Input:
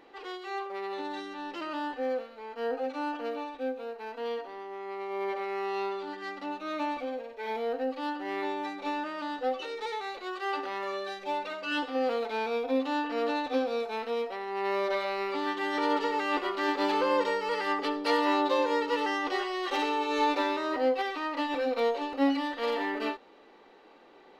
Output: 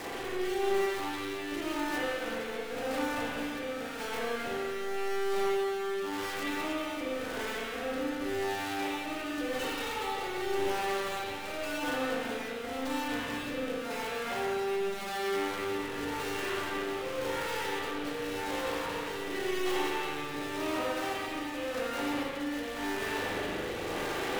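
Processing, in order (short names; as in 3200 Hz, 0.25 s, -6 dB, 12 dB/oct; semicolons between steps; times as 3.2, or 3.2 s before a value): infinite clipping; rotary speaker horn 0.9 Hz; spring tank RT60 1.9 s, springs 38/48 ms, chirp 65 ms, DRR -6 dB; gain -6.5 dB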